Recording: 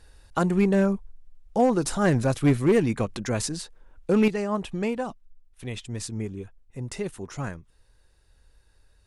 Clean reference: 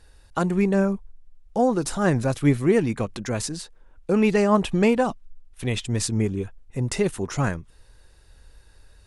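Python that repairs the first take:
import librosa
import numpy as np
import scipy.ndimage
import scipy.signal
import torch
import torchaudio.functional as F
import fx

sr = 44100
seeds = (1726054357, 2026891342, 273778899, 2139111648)

y = fx.fix_declip(x, sr, threshold_db=-13.5)
y = fx.fix_level(y, sr, at_s=4.28, step_db=8.5)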